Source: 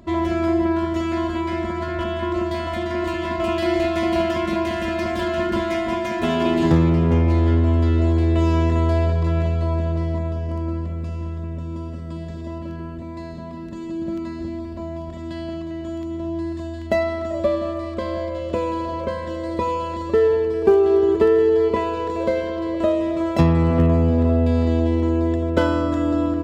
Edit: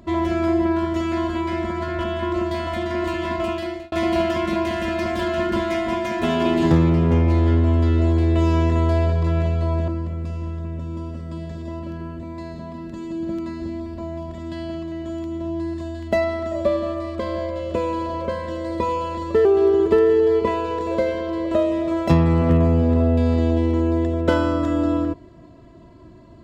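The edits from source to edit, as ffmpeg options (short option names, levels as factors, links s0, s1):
-filter_complex "[0:a]asplit=4[s0][s1][s2][s3];[s0]atrim=end=3.92,asetpts=PTS-STARTPTS,afade=t=out:st=3.35:d=0.57[s4];[s1]atrim=start=3.92:end=9.882,asetpts=PTS-STARTPTS,afade=t=in:d=0.004:c=hsin[s5];[s2]atrim=start=10.668:end=20.242[s6];[s3]atrim=start=20.738[s7];[s4][s5]concat=n=2:v=0:a=1[s8];[s8][s6]acrossfade=d=0.004:c1=hsin:c2=hsin[s9];[s9][s7]acrossfade=d=0.004:c1=hsin:c2=hsin"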